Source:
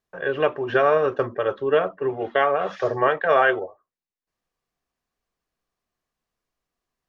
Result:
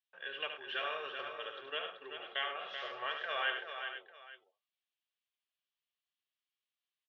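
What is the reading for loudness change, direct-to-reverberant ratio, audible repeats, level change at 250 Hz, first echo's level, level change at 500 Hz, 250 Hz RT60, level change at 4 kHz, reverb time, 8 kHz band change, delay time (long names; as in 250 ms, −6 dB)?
−17.5 dB, no reverb audible, 5, −29.0 dB, −7.0 dB, −24.5 dB, no reverb audible, −0.5 dB, no reverb audible, can't be measured, 73 ms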